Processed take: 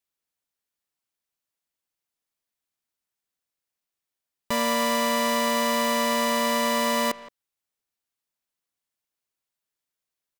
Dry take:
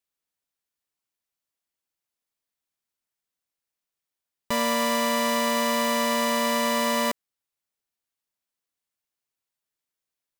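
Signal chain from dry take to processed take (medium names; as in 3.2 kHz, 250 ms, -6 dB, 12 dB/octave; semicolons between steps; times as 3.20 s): speakerphone echo 170 ms, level -16 dB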